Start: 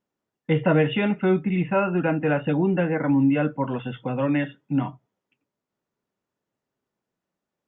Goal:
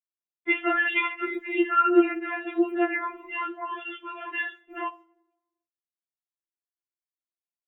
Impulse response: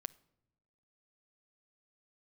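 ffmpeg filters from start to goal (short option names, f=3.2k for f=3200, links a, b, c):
-filter_complex "[0:a]agate=range=-33dB:threshold=-39dB:ratio=3:detection=peak[a];[1:a]atrim=start_sample=2205[b];[a][b]afir=irnorm=-1:irlink=0,asplit=3[c][d][e];[c]afade=t=out:st=2.19:d=0.02[f];[d]flanger=delay=8.3:depth=6.9:regen=-72:speed=1.1:shape=triangular,afade=t=in:st=2.19:d=0.02,afade=t=out:st=4.43:d=0.02[g];[e]afade=t=in:st=4.43:d=0.02[h];[f][g][h]amix=inputs=3:normalize=0,highpass=370,alimiter=level_in=20.5dB:limit=-1dB:release=50:level=0:latency=1,afftfilt=real='re*4*eq(mod(b,16),0)':imag='im*4*eq(mod(b,16),0)':win_size=2048:overlap=0.75,volume=-8.5dB"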